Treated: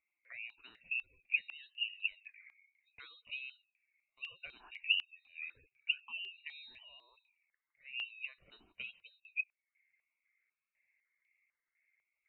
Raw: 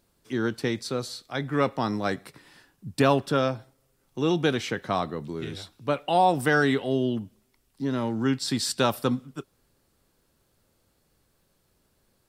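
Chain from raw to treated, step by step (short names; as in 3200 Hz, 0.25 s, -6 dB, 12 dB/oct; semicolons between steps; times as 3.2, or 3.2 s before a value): elliptic band-stop 150–1200 Hz, stop band 40 dB; auto-wah 430–1800 Hz, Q 20, down, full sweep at -21.5 dBFS; inverted band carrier 3900 Hz; spectral gate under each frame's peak -25 dB strong; step phaser 4 Hz 460–1500 Hz; gain +15.5 dB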